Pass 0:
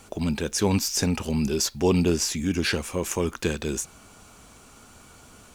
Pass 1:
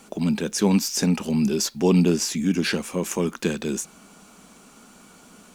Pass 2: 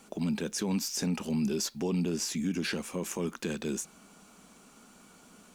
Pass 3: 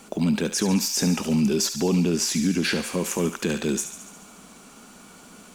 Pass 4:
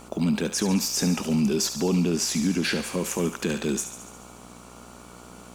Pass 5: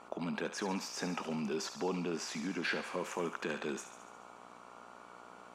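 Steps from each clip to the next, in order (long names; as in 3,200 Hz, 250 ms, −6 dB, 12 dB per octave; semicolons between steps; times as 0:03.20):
low shelf with overshoot 140 Hz −9 dB, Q 3
brickwall limiter −16 dBFS, peak gain reduction 8.5 dB; level −6.5 dB
feedback echo with a high-pass in the loop 71 ms, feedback 67%, high-pass 950 Hz, level −9 dB; level +8.5 dB
hum with harmonics 60 Hz, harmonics 23, −47 dBFS −2 dB per octave; level −1.5 dB
resonant band-pass 1,100 Hz, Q 0.84; level −3 dB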